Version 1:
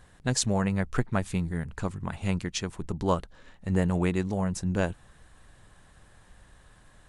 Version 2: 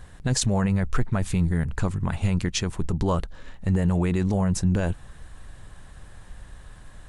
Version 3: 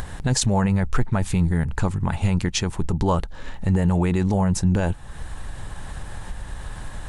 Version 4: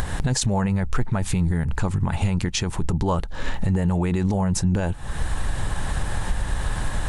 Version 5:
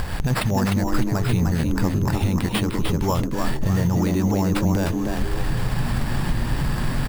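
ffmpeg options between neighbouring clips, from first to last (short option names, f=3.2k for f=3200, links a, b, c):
-af "lowshelf=f=100:g=8.5,alimiter=limit=-19.5dB:level=0:latency=1:release=14,volume=6dB"
-af "equalizer=f=860:t=o:w=0.22:g=6.5,acompressor=mode=upward:threshold=-24dB:ratio=2.5,volume=2.5dB"
-af "alimiter=limit=-21.5dB:level=0:latency=1:release=178,volume=8.5dB"
-filter_complex "[0:a]acrusher=samples=7:mix=1:aa=0.000001,asplit=5[a][b][c][d][e];[b]adelay=303,afreqshift=110,volume=-5dB[f];[c]adelay=606,afreqshift=220,volume=-13.9dB[g];[d]adelay=909,afreqshift=330,volume=-22.7dB[h];[e]adelay=1212,afreqshift=440,volume=-31.6dB[i];[a][f][g][h][i]amix=inputs=5:normalize=0"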